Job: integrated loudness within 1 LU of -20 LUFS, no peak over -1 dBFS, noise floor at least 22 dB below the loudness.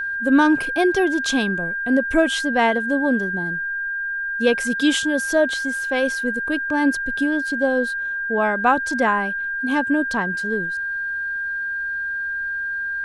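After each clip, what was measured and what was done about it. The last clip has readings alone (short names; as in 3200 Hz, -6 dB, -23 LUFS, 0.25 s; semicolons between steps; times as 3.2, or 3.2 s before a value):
steady tone 1600 Hz; tone level -23 dBFS; loudness -21.0 LUFS; peak -5.0 dBFS; loudness target -20.0 LUFS
-> notch 1600 Hz, Q 30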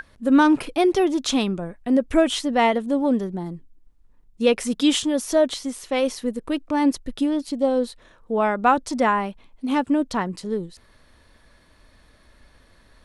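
steady tone none; loudness -22.0 LUFS; peak -6.0 dBFS; loudness target -20.0 LUFS
-> gain +2 dB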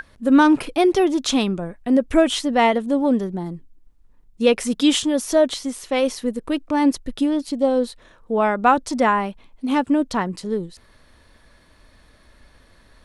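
loudness -20.0 LUFS; peak -4.0 dBFS; noise floor -54 dBFS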